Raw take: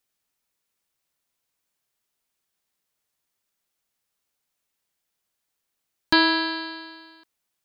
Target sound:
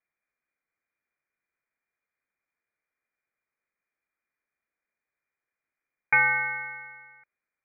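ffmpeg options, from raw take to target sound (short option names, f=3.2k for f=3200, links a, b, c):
-af "equalizer=f=100:t=o:w=0.67:g=9,equalizer=f=250:t=o:w=0.67:g=-5,equalizer=f=1.6k:t=o:w=0.67:g=-9,lowpass=f=2.1k:t=q:w=0.5098,lowpass=f=2.1k:t=q:w=0.6013,lowpass=f=2.1k:t=q:w=0.9,lowpass=f=2.1k:t=q:w=2.563,afreqshift=-2500,volume=2dB"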